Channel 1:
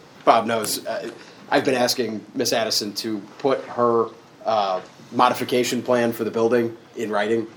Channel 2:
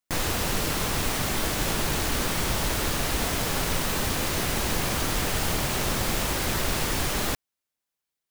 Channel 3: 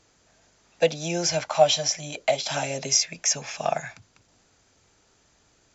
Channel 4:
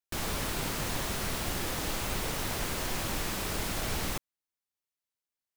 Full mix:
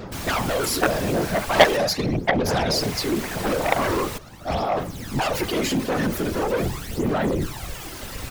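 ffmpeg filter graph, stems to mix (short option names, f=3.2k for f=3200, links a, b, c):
-filter_complex "[0:a]equalizer=f=110:t=o:w=1.4:g=11,aeval=exprs='0.251*(abs(mod(val(0)/0.251+3,4)-2)-1)':c=same,volume=0.5dB[a];[1:a]adelay=1550,volume=-9.5dB[b];[2:a]lowpass=f=1.8k:w=0.5412,lowpass=f=1.8k:w=1.3066,acontrast=79,volume=1dB,asplit=2[c][d];[3:a]volume=2.5dB,asplit=3[e][f][g];[e]atrim=end=1.77,asetpts=PTS-STARTPTS,afade=t=out:st=1.766:d=0.004:c=hsin[h];[f]atrim=start=1.77:end=2.77,asetpts=PTS-STARTPTS,volume=0[i];[g]atrim=start=2.77,asetpts=PTS-STARTPTS,afade=t=in:d=0.004:c=hsin[j];[h][i][j]concat=n=3:v=0:a=1[k];[d]apad=whole_len=434772[l];[b][l]sidechaincompress=threshold=-37dB:ratio=8:attack=5.1:release=838[m];[a][m]amix=inputs=2:normalize=0,aphaser=in_gain=1:out_gain=1:delay=4:decay=0.67:speed=0.42:type=sinusoidal,alimiter=limit=-12.5dB:level=0:latency=1:release=31,volume=0dB[n];[c][k][n]amix=inputs=3:normalize=0,afftfilt=real='hypot(re,im)*cos(2*PI*random(0))':imag='hypot(re,im)*sin(2*PI*random(1))':win_size=512:overlap=0.75,aeval=exprs='0.708*(cos(1*acos(clip(val(0)/0.708,-1,1)))-cos(1*PI/2))+0.282*(cos(7*acos(clip(val(0)/0.708,-1,1)))-cos(7*PI/2))':c=same"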